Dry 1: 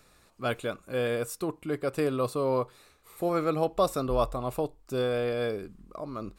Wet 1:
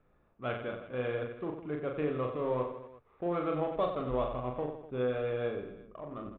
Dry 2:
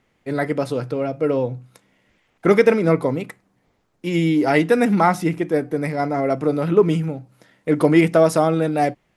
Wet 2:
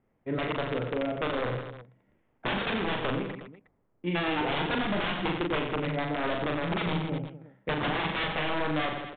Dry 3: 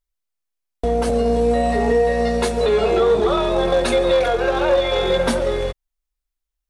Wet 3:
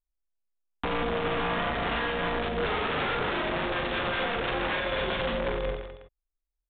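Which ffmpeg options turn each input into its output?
-af "aeval=exprs='(mod(4.47*val(0)+1,2)-1)/4.47':c=same,adynamicsmooth=sensitivity=4.5:basefreq=1.3k,aresample=8000,aresample=44100,aecho=1:1:40|92|159.6|247.5|361.7:0.631|0.398|0.251|0.158|0.1,alimiter=limit=-14dB:level=0:latency=1:release=173,volume=-6.5dB" -ar 48000 -c:a aac -b:a 192k

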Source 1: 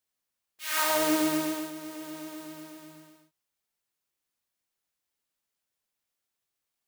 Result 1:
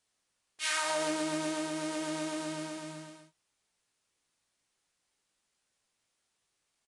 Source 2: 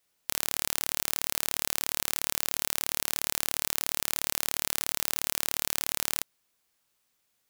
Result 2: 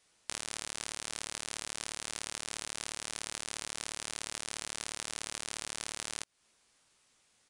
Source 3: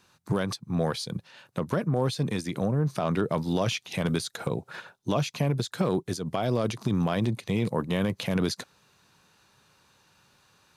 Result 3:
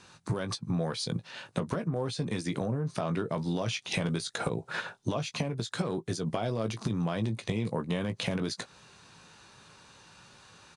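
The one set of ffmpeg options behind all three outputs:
-filter_complex "[0:a]acompressor=threshold=-35dB:ratio=10,asplit=2[a][b];[b]adelay=18,volume=-9dB[c];[a][c]amix=inputs=2:normalize=0,aresample=22050,aresample=44100,volume=7dB"

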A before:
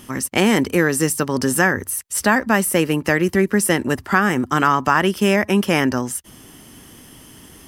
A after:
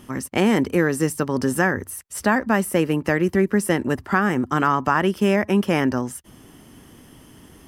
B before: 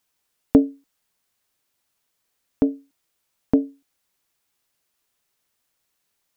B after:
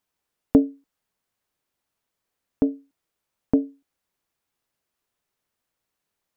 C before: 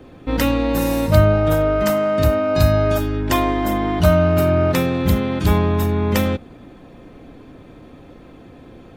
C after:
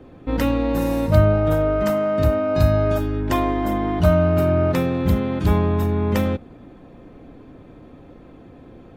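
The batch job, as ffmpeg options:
-af "highshelf=f=2.1k:g=-8,volume=-1.5dB"

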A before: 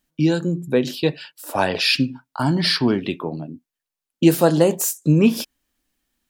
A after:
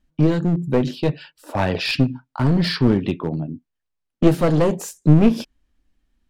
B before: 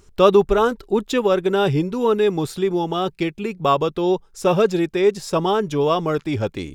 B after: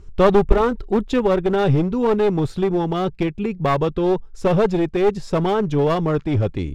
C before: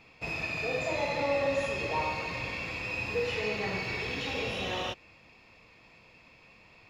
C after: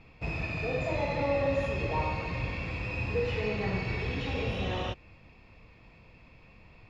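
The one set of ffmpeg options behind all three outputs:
-af "aemphasis=mode=reproduction:type=bsi,aeval=exprs='clip(val(0),-1,0.15)':c=same,volume=-1dB"

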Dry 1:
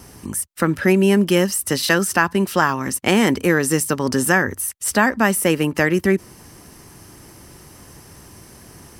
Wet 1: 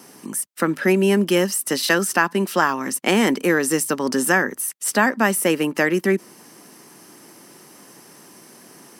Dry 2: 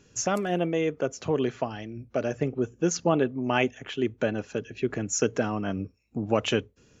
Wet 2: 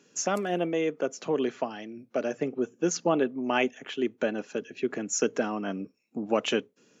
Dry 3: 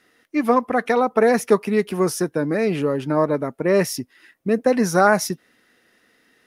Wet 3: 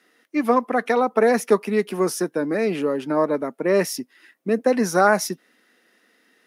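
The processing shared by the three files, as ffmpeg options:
-af "highpass=f=190:w=0.5412,highpass=f=190:w=1.3066,volume=-1dB"

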